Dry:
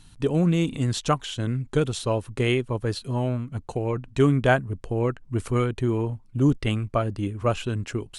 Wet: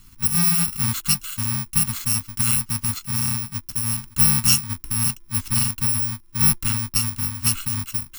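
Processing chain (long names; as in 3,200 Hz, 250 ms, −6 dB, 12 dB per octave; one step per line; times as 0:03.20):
samples in bit-reversed order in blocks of 128 samples
Chebyshev band-stop filter 360–890 Hz, order 5
level +2.5 dB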